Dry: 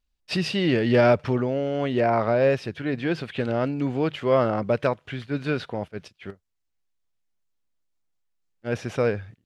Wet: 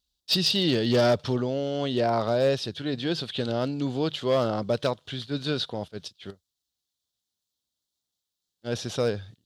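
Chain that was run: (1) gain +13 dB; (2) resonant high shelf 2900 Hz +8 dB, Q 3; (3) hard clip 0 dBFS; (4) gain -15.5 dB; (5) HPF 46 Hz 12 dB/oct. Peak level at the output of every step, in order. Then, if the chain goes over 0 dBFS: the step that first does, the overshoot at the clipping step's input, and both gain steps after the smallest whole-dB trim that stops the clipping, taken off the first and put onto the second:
+6.0, +6.5, 0.0, -15.5, -13.5 dBFS; step 1, 6.5 dB; step 1 +6 dB, step 4 -8.5 dB

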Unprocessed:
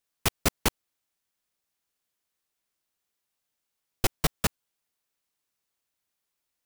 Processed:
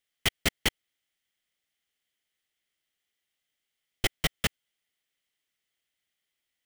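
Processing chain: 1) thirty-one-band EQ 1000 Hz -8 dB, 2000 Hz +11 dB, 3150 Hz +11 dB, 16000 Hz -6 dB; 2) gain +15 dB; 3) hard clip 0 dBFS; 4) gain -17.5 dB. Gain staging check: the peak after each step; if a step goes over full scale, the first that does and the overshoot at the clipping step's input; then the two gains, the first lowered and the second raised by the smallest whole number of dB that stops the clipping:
-7.5, +7.5, 0.0, -17.5 dBFS; step 2, 7.5 dB; step 2 +7 dB, step 4 -9.5 dB

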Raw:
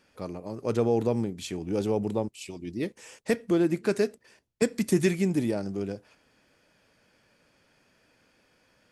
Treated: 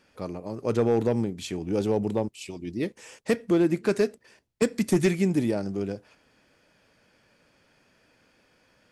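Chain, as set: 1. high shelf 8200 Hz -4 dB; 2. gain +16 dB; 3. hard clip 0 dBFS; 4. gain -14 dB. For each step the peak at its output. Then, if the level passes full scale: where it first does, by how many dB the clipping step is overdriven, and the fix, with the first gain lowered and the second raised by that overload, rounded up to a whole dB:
-11.0, +5.0, 0.0, -14.0 dBFS; step 2, 5.0 dB; step 2 +11 dB, step 4 -9 dB

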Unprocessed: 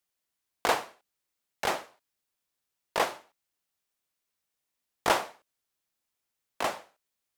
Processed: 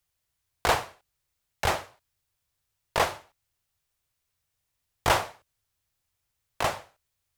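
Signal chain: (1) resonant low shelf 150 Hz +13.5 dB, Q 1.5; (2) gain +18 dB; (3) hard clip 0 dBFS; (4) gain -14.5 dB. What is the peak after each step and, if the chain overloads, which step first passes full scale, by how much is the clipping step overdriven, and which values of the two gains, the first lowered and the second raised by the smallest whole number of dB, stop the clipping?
-9.5, +8.5, 0.0, -14.5 dBFS; step 2, 8.5 dB; step 2 +9 dB, step 4 -5.5 dB

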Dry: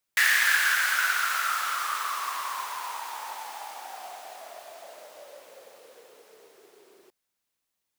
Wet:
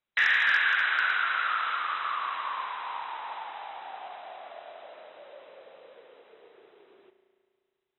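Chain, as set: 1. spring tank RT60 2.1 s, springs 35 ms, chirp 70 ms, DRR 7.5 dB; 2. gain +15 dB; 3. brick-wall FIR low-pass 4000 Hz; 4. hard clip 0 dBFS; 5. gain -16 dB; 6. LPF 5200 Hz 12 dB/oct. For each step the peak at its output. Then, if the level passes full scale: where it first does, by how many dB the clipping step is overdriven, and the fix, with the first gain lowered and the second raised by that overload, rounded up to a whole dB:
-9.5, +5.5, +5.0, 0.0, -16.0, -15.5 dBFS; step 2, 5.0 dB; step 2 +10 dB, step 5 -11 dB

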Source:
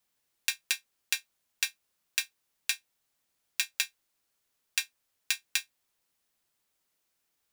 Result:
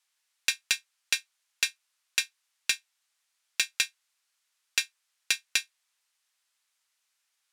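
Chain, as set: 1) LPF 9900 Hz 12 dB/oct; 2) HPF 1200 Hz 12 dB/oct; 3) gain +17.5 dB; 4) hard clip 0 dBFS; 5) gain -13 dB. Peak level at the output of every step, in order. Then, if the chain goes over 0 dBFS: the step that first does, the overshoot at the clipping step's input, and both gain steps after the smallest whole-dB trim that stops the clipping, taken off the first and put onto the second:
-9.5, -9.0, +8.5, 0.0, -13.0 dBFS; step 3, 8.5 dB; step 3 +8.5 dB, step 5 -4 dB

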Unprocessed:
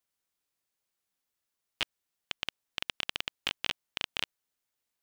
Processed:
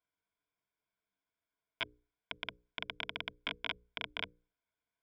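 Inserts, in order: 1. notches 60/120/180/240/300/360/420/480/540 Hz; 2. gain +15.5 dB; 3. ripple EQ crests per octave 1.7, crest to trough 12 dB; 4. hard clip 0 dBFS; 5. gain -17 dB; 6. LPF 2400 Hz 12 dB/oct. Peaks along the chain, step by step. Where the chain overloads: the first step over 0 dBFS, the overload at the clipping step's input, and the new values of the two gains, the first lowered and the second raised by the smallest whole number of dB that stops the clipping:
-12.0, +3.5, +3.5, 0.0, -17.0, -19.5 dBFS; step 2, 3.5 dB; step 2 +11.5 dB, step 5 -13 dB

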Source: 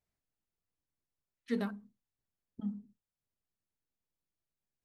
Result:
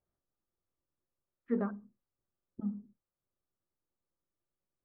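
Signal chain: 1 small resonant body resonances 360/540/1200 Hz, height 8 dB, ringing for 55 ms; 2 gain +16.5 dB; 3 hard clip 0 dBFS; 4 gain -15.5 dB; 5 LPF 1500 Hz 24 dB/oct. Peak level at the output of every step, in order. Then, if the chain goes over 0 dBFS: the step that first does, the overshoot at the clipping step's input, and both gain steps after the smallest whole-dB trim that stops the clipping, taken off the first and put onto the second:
-20.0, -3.5, -3.5, -19.0, -19.5 dBFS; no overload

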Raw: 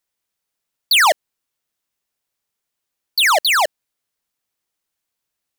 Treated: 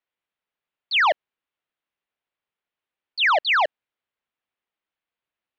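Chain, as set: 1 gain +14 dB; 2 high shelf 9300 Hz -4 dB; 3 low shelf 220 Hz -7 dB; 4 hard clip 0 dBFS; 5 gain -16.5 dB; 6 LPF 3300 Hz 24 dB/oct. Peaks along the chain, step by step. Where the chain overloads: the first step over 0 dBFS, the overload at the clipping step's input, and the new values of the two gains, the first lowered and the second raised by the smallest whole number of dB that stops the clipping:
+2.5, +2.5, +4.5, 0.0, -16.5, -14.5 dBFS; step 1, 4.5 dB; step 1 +9 dB, step 5 -11.5 dB

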